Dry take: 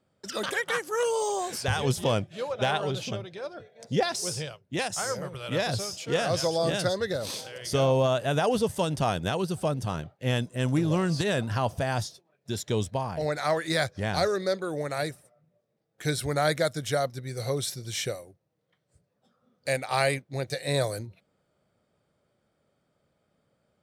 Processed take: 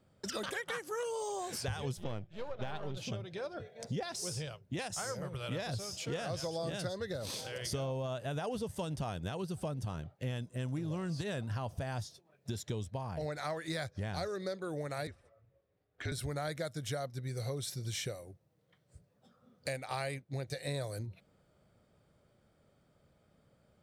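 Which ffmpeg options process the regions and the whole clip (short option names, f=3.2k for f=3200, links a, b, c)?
-filter_complex "[0:a]asettb=1/sr,asplit=3[a][b][c];[a]atrim=end=1.974[d];[b]atrim=start=1.97:end=2.97,asetpts=PTS-STARTPTS,afade=t=in:d=0.004:c=qsin,afade=t=out:st=0.996:d=0.004:c=qsin,aeval=exprs='if(lt(val(0),0),0.447*val(0),val(0))':c=same,equalizer=f=10k:w=0.58:g=-11[e];[c]atrim=start=2.966[f];[d][e]acrossfade=d=0.004:c1=hsin:c2=qsin[g];[g][f]acrossfade=d=0.004:c1=qsin:c2=hsin,asettb=1/sr,asplit=3[h][i][j];[h]atrim=end=15.074[k];[i]atrim=start=15.07:end=16.12,asetpts=PTS-STARTPTS,afade=t=in:d=0.004:c=qsin,afade=t=out:st=1.046:d=0.004:c=qsin,lowpass=3.2k,lowshelf=f=480:g=-8,afreqshift=-41[l];[j]atrim=start=16.116[m];[k][l]acrossfade=d=0.004:c1=hsin:c2=qsin[n];[n][m]acrossfade=d=0.004:c1=qsin:c2=hsin,lowshelf=f=110:g=10.5,acompressor=threshold=-39dB:ratio=4,volume=1.5dB"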